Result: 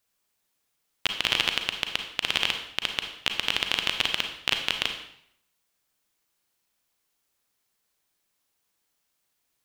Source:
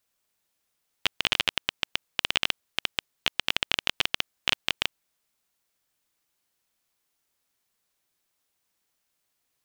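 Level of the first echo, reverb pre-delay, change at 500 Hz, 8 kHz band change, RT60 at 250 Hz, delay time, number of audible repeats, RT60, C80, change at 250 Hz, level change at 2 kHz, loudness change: none, 33 ms, +1.0 dB, +1.0 dB, 0.70 s, none, none, 0.65 s, 10.0 dB, +1.5 dB, +1.0 dB, +1.5 dB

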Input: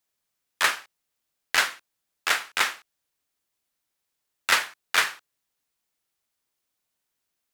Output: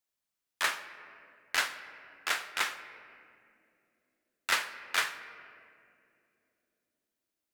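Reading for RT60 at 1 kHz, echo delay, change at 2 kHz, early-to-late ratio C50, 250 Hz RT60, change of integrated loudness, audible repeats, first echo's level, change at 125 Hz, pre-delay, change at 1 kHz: 2.1 s, none, -7.0 dB, 12.0 dB, 4.4 s, -7.5 dB, none, none, n/a, 3 ms, -7.0 dB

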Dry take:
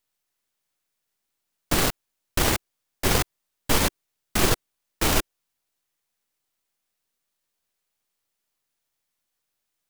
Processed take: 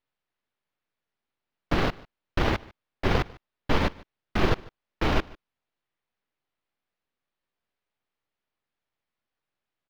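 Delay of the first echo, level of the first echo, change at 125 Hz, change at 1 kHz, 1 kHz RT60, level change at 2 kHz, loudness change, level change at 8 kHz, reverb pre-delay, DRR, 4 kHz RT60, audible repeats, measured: 0.148 s, -23.0 dB, 0.0 dB, -1.5 dB, none, -3.0 dB, -4.0 dB, -22.5 dB, none, none, none, 1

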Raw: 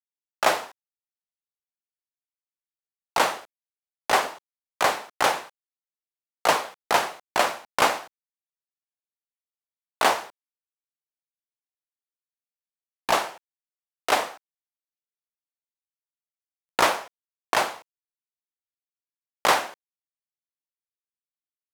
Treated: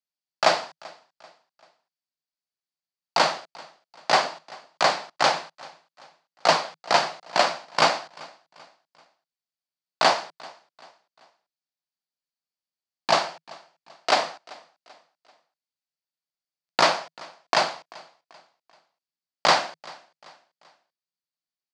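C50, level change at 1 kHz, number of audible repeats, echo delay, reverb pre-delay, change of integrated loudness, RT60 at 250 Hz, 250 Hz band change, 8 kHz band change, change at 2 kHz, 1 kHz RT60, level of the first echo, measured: none, +1.0 dB, 2, 0.388 s, none, +1.0 dB, none, 0.0 dB, -2.0 dB, 0.0 dB, none, -23.0 dB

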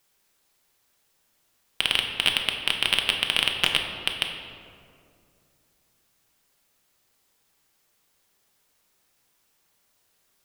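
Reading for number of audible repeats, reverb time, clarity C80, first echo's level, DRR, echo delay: none, 2.4 s, 6.0 dB, none, 2.5 dB, none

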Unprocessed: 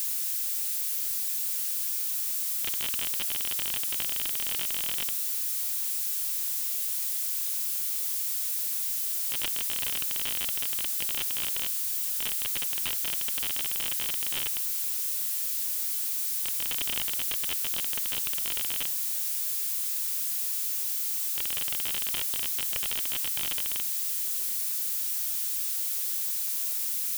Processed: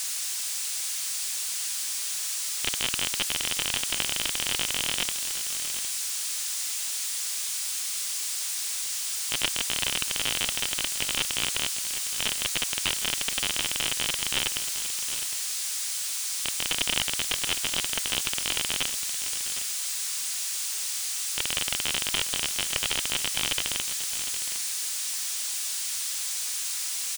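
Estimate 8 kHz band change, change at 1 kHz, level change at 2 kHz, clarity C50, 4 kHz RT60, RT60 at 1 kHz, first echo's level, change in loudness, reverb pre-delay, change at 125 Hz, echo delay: +5.0 dB, +8.0 dB, +8.0 dB, none, none, none, -11.5 dB, +0.5 dB, none, +8.0 dB, 0.76 s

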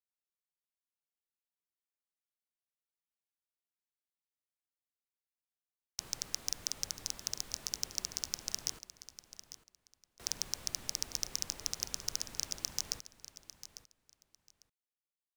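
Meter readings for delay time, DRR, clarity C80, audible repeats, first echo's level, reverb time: 0.849 s, none, none, 2, -14.0 dB, none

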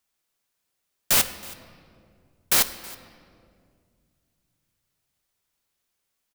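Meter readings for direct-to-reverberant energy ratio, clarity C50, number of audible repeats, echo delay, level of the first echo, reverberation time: 10.0 dB, 12.5 dB, 1, 0.322 s, -22.0 dB, 2.2 s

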